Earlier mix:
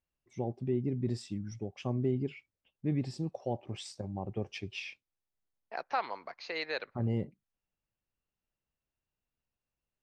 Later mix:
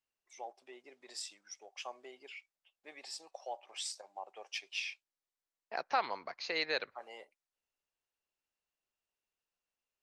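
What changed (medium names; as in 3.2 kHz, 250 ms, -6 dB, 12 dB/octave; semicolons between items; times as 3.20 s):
first voice: add high-pass 690 Hz 24 dB/octave; master: add treble shelf 4.6 kHz +10 dB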